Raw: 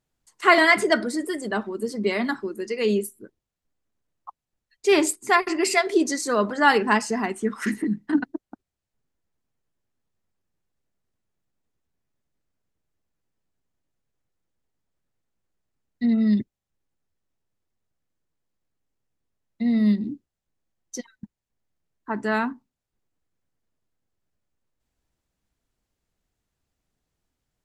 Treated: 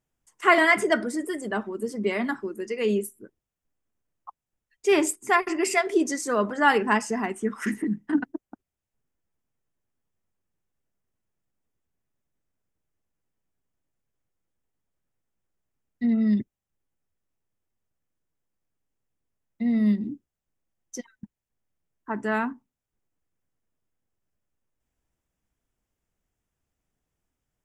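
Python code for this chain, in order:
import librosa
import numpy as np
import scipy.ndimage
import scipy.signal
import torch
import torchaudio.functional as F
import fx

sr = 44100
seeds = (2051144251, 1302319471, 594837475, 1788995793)

y = fx.peak_eq(x, sr, hz=4200.0, db=-12.5, octaves=0.31)
y = y * 10.0 ** (-2.0 / 20.0)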